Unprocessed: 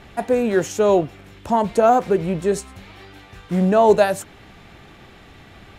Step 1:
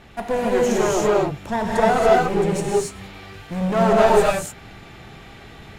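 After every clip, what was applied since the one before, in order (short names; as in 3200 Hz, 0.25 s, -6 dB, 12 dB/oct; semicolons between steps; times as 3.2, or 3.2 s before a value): one-sided clip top -24.5 dBFS; non-linear reverb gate 0.31 s rising, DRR -4.5 dB; gain -2.5 dB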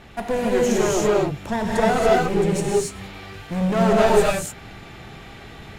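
dynamic EQ 900 Hz, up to -5 dB, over -29 dBFS, Q 0.78; gain +1.5 dB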